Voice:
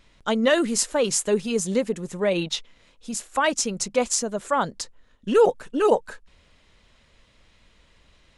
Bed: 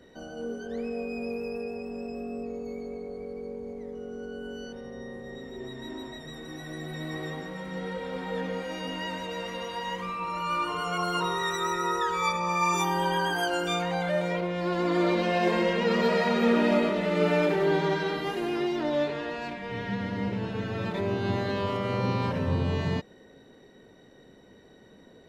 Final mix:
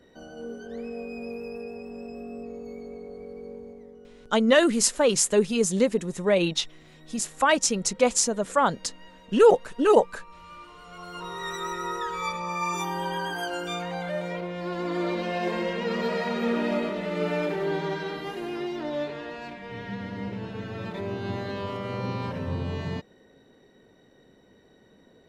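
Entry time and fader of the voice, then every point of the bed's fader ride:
4.05 s, +1.0 dB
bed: 3.56 s -2.5 dB
4.41 s -17 dB
10.83 s -17 dB
11.51 s -3.5 dB

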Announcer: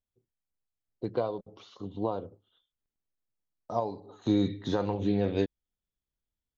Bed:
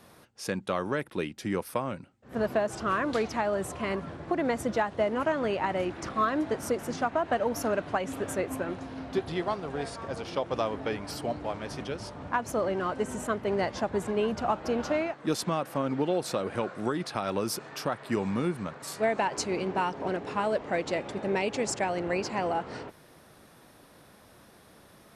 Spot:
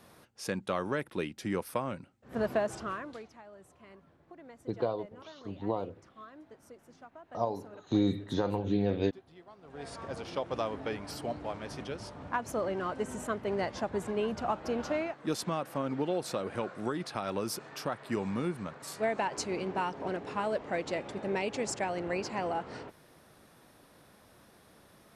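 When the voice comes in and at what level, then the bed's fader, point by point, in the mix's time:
3.65 s, -1.5 dB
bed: 2.70 s -2.5 dB
3.38 s -23.5 dB
9.52 s -23.5 dB
9.93 s -4 dB

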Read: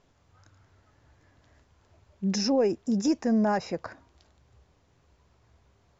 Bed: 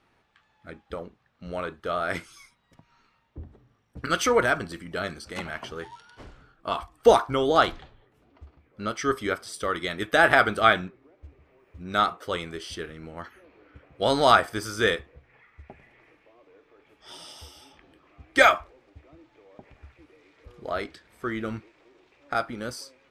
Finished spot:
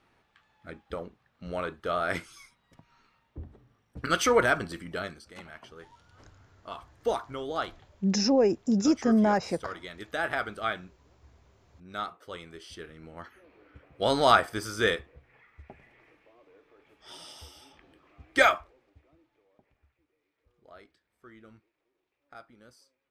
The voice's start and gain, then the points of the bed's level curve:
5.80 s, +1.5 dB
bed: 4.89 s -1 dB
5.31 s -12 dB
12.27 s -12 dB
13.54 s -2.5 dB
18.31 s -2.5 dB
20.05 s -21.5 dB

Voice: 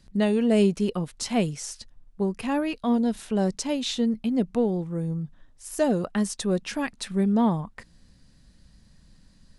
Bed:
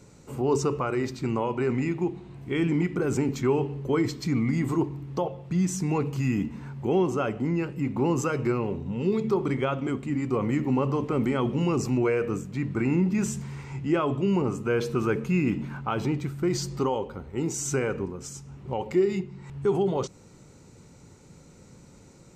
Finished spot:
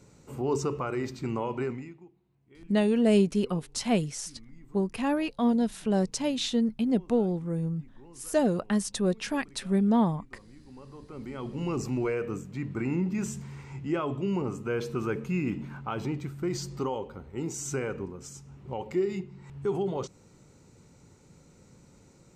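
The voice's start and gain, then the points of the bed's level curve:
2.55 s, -1.5 dB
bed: 1.63 s -4 dB
2.10 s -28 dB
10.58 s -28 dB
11.73 s -5 dB

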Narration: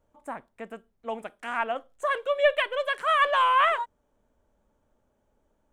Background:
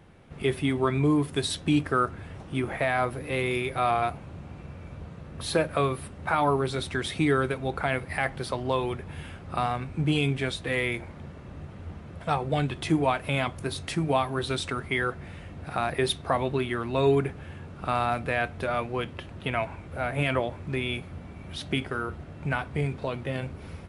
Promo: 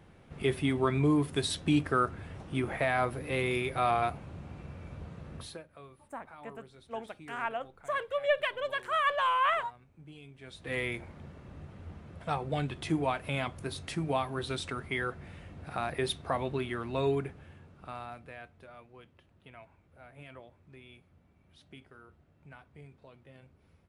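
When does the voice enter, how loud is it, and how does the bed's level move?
5.85 s, -6.0 dB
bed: 5.36 s -3 dB
5.63 s -26 dB
10.33 s -26 dB
10.74 s -6 dB
16.97 s -6 dB
18.74 s -23.5 dB

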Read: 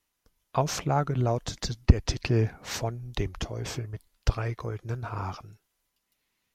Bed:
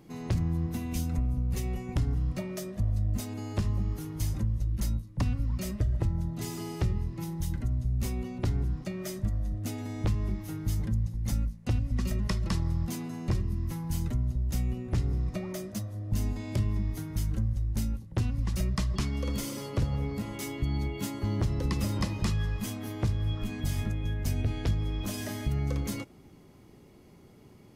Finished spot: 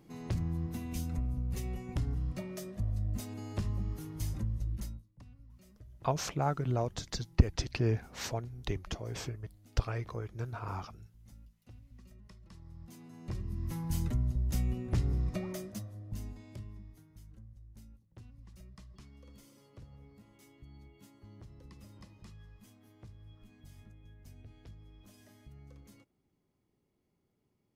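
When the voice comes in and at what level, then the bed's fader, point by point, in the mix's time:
5.50 s, -5.5 dB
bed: 4.73 s -5.5 dB
5.21 s -26 dB
12.46 s -26 dB
13.79 s -2 dB
15.43 s -2 dB
17.14 s -24 dB

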